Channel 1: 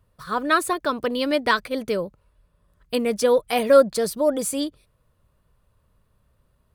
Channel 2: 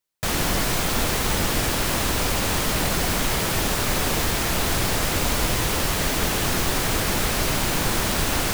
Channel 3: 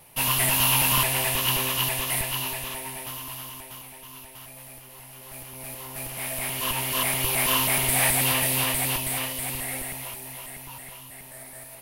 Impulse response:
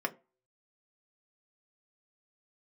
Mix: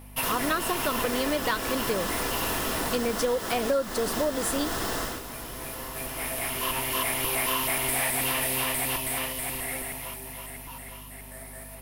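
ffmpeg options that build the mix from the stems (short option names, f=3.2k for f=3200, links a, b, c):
-filter_complex "[0:a]volume=-1.5dB,asplit=2[a][b];[1:a]equalizer=f=2.3k:w=6.4:g=-11.5,volume=-10dB,afade=t=out:st=4.99:d=0.23:silence=0.266073,asplit=2[c][d];[d]volume=-4.5dB[e];[2:a]aeval=exprs='val(0)+0.01*(sin(2*PI*50*n/s)+sin(2*PI*2*50*n/s)/2+sin(2*PI*3*50*n/s)/3+sin(2*PI*4*50*n/s)/4+sin(2*PI*5*50*n/s)/5)':c=same,volume=-4.5dB,asplit=2[f][g];[g]volume=-7dB[h];[b]apad=whole_len=521119[i];[f][i]sidechaincompress=threshold=-44dB:ratio=8:attack=16:release=314[j];[3:a]atrim=start_sample=2205[k];[e][h]amix=inputs=2:normalize=0[l];[l][k]afir=irnorm=-1:irlink=0[m];[a][c][j][m]amix=inputs=4:normalize=0,acompressor=threshold=-23dB:ratio=6"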